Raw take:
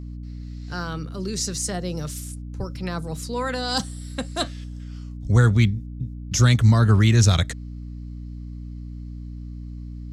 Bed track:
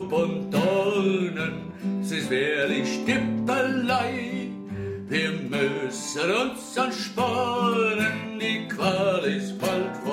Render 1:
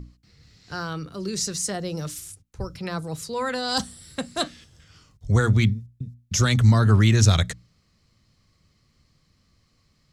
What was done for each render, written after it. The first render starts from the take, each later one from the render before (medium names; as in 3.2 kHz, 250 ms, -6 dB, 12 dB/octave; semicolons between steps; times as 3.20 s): hum notches 60/120/180/240/300 Hz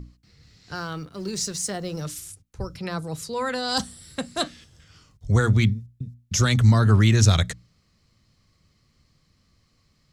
0.75–2.01 s: companding laws mixed up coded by A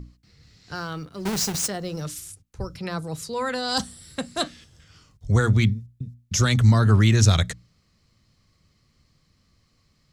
1.25–1.68 s: square wave that keeps the level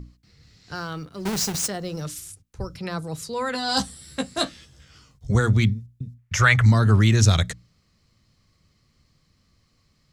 3.53–5.35 s: doubling 15 ms -3 dB; 6.18–6.66 s: FFT filter 140 Hz 0 dB, 230 Hz -13 dB, 580 Hz +3 dB, 2 kHz +13 dB, 3.9 kHz -4 dB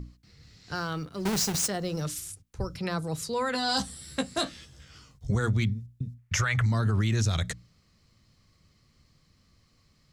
peak limiter -11.5 dBFS, peak gain reduction 7.5 dB; compression 2.5:1, threshold -25 dBFS, peak gain reduction 7 dB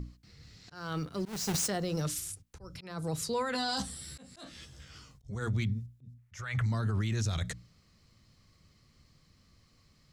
peak limiter -24 dBFS, peak gain reduction 10.5 dB; slow attack 277 ms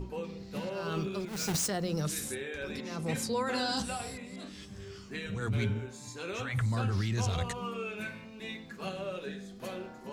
add bed track -15 dB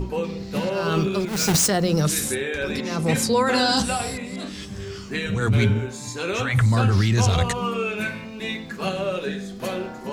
trim +12 dB